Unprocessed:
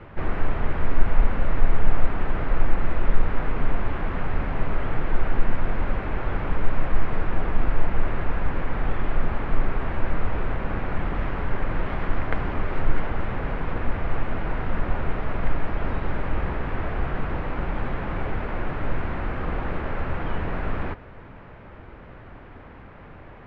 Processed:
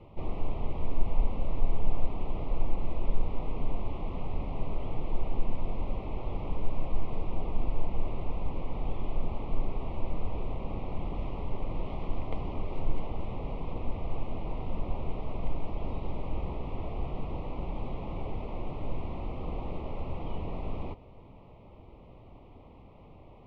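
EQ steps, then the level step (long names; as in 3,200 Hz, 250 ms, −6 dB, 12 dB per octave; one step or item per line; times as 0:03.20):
Butterworth band-reject 1,600 Hz, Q 1.1
−7.5 dB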